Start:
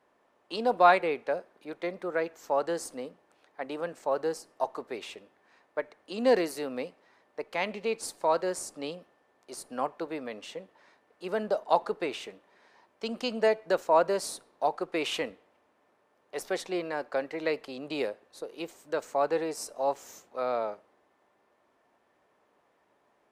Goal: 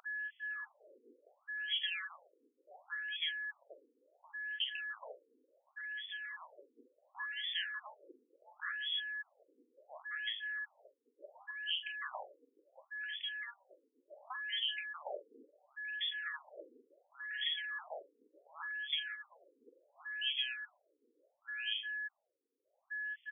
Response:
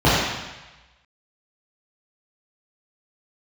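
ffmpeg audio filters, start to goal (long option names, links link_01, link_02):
-filter_complex "[0:a]lowpass=frequency=3200:width_type=q:width=0.5098,lowpass=frequency=3200:width_type=q:width=0.6013,lowpass=frequency=3200:width_type=q:width=0.9,lowpass=frequency=3200:width_type=q:width=2.563,afreqshift=-3800,acrossover=split=180[link_01][link_02];[link_01]aeval=exprs='0.00422*sin(PI/2*10*val(0)/0.00422)':channel_layout=same[link_03];[link_03][link_02]amix=inputs=2:normalize=0,equalizer=frequency=580:width_type=o:width=0.67:gain=13.5,aecho=1:1:1066:0.531,tremolo=f=1.1:d=0.43,asplit=2[link_04][link_05];[1:a]atrim=start_sample=2205,asetrate=33957,aresample=44100,lowpass=1000[link_06];[link_05][link_06]afir=irnorm=-1:irlink=0,volume=-47.5dB[link_07];[link_04][link_07]amix=inputs=2:normalize=0,acompressor=threshold=-30dB:ratio=4,aeval=exprs='val(0)+0.0141*sin(2*PI*1700*n/s)':channel_layout=same,alimiter=level_in=3.5dB:limit=-24dB:level=0:latency=1:release=346,volume=-3.5dB,asplit=2[link_08][link_09];[link_09]adelay=45,volume=-10dB[link_10];[link_08][link_10]amix=inputs=2:normalize=0,afftfilt=real='re*between(b*sr/1024,340*pow(2500/340,0.5+0.5*sin(2*PI*0.7*pts/sr))/1.41,340*pow(2500/340,0.5+0.5*sin(2*PI*0.7*pts/sr))*1.41)':imag='im*between(b*sr/1024,340*pow(2500/340,0.5+0.5*sin(2*PI*0.7*pts/sr))/1.41,340*pow(2500/340,0.5+0.5*sin(2*PI*0.7*pts/sr))*1.41)':win_size=1024:overlap=0.75,volume=3dB"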